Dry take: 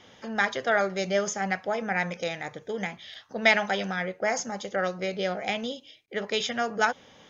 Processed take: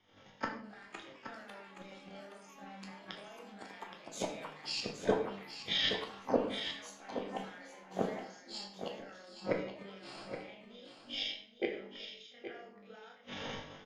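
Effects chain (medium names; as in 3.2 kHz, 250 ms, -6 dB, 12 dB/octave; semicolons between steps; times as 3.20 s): hum notches 60/120/180/240/300/360/420 Hz; gate -51 dBFS, range -19 dB; dynamic bell 2.9 kHz, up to +5 dB, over -42 dBFS, Q 1.2; compression 6:1, threshold -27 dBFS, peak gain reduction 13.5 dB; peak limiter -23.5 dBFS, peak gain reduction 10 dB; granular stretch 1.9×, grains 86 ms; inverted gate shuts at -33 dBFS, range -30 dB; distance through air 99 m; ever faster or slower copies 639 ms, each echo +6 st, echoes 2, each echo -6 dB; delay 822 ms -7.5 dB; on a send at -1 dB: reverberation RT60 0.60 s, pre-delay 9 ms; on the sum: three bands expanded up and down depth 40%; trim +12 dB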